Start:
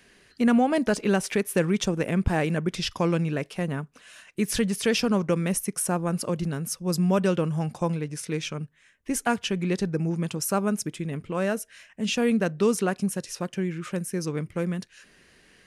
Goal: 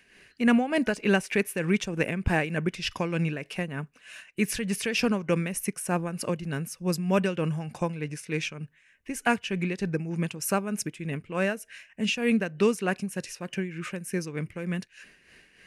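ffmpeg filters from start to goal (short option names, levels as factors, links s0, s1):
-af "superequalizer=11b=1.78:12b=2.24,tremolo=f=3.3:d=0.63"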